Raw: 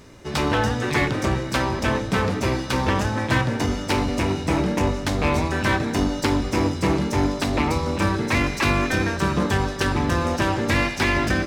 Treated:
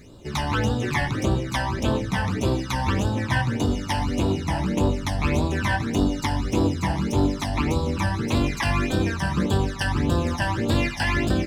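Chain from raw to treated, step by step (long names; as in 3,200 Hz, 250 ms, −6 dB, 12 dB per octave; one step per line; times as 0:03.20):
all-pass phaser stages 12, 1.7 Hz, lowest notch 380–2,100 Hz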